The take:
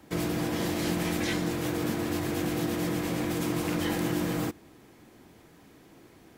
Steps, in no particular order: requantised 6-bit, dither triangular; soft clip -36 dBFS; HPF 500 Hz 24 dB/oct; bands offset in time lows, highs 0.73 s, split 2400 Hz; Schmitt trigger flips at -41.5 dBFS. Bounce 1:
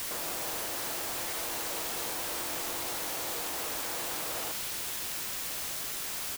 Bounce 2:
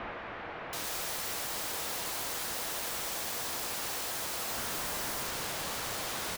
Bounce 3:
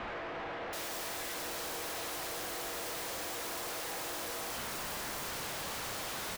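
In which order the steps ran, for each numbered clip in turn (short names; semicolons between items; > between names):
Schmitt trigger > HPF > soft clip > bands offset in time > requantised; soft clip > requantised > HPF > Schmitt trigger > bands offset in time; requantised > HPF > Schmitt trigger > bands offset in time > soft clip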